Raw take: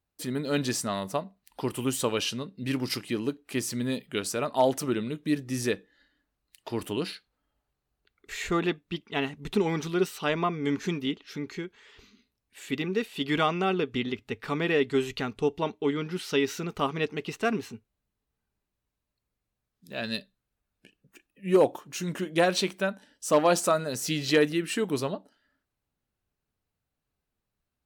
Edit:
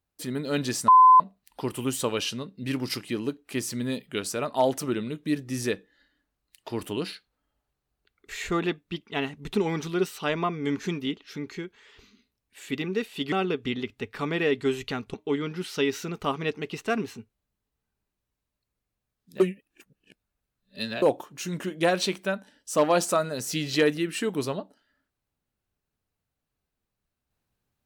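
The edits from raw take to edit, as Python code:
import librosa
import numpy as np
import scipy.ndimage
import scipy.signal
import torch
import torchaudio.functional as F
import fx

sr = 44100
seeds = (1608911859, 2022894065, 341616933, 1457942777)

y = fx.edit(x, sr, fx.bleep(start_s=0.88, length_s=0.32, hz=1020.0, db=-10.5),
    fx.cut(start_s=13.32, length_s=0.29),
    fx.cut(start_s=15.43, length_s=0.26),
    fx.reverse_span(start_s=19.95, length_s=1.62), tone=tone)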